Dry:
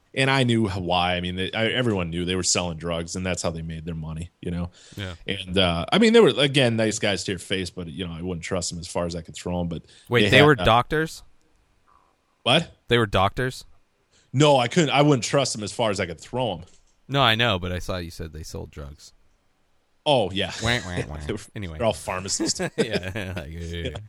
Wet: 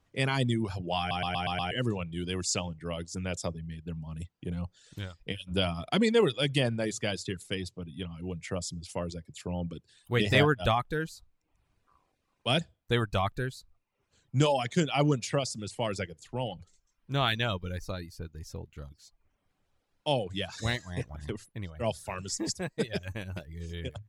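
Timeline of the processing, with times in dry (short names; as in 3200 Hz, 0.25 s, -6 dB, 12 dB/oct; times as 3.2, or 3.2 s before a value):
0.99 stutter in place 0.12 s, 6 plays
whole clip: bell 110 Hz +5.5 dB 1.7 oct; reverb removal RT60 0.61 s; gain -9 dB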